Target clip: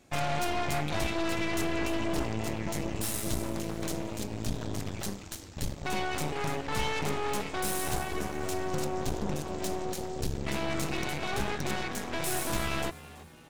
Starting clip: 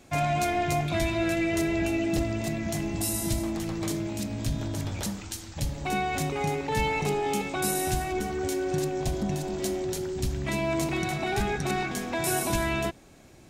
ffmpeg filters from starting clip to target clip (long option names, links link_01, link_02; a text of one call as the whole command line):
ffmpeg -i in.wav -filter_complex "[0:a]aeval=exprs='0.211*(cos(1*acos(clip(val(0)/0.211,-1,1)))-cos(1*PI/2))+0.0473*(cos(8*acos(clip(val(0)/0.211,-1,1)))-cos(8*PI/2))':channel_layout=same,asplit=5[link_01][link_02][link_03][link_04][link_05];[link_02]adelay=330,afreqshift=80,volume=-18dB[link_06];[link_03]adelay=660,afreqshift=160,volume=-25.1dB[link_07];[link_04]adelay=990,afreqshift=240,volume=-32.3dB[link_08];[link_05]adelay=1320,afreqshift=320,volume=-39.4dB[link_09];[link_01][link_06][link_07][link_08][link_09]amix=inputs=5:normalize=0,volume=-6.5dB" out.wav